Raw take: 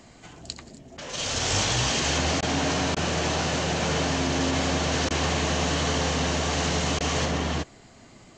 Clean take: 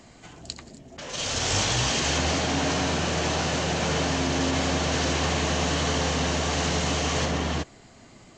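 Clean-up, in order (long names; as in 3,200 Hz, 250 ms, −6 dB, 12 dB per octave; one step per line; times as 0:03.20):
repair the gap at 0:02.41/0:02.95/0:05.09/0:06.99, 14 ms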